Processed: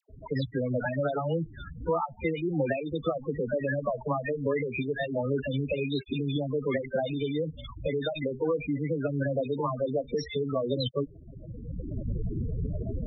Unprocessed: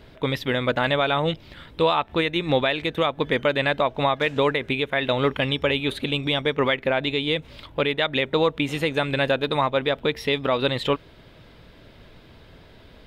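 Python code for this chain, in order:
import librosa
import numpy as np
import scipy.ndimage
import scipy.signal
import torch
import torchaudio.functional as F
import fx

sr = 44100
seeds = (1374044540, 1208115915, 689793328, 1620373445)

y = fx.recorder_agc(x, sr, target_db=-17.0, rise_db_per_s=21.0, max_gain_db=30)
y = fx.tube_stage(y, sr, drive_db=24.0, bias=0.2)
y = fx.spec_topn(y, sr, count=8)
y = fx.dispersion(y, sr, late='lows', ms=98.0, hz=910.0)
y = y * librosa.db_to_amplitude(1.5)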